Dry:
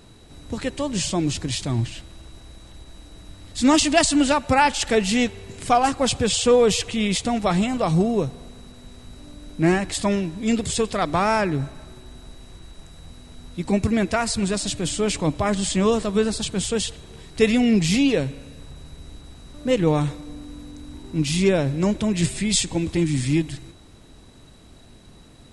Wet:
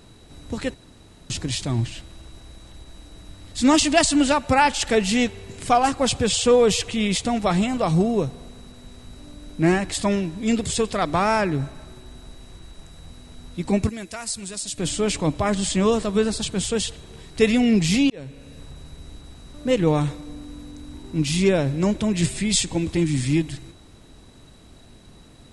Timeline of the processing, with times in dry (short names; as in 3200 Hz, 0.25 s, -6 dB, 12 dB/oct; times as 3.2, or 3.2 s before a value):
0.74–1.3 room tone
13.89–14.78 pre-emphasis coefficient 0.8
18.1–18.58 fade in